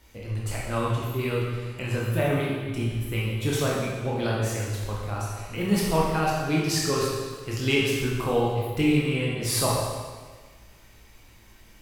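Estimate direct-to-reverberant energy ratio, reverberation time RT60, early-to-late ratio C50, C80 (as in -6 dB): -5.0 dB, 1.5 s, -0.5 dB, 2.0 dB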